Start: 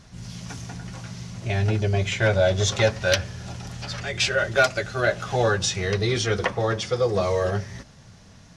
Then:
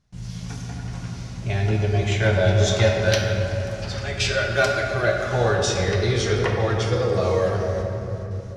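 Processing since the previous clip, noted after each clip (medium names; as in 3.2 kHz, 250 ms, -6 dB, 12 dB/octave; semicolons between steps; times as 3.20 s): gate with hold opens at -39 dBFS; bass shelf 140 Hz +6.5 dB; reverberation RT60 3.2 s, pre-delay 7 ms, DRR 0.5 dB; trim -2 dB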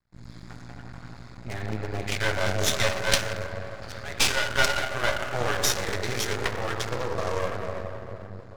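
local Wiener filter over 15 samples; tilt shelf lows -8.5 dB; half-wave rectifier; trim +1 dB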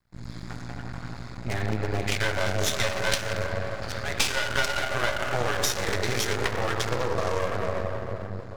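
compression 5:1, threshold -26 dBFS, peak gain reduction 11 dB; trim +5.5 dB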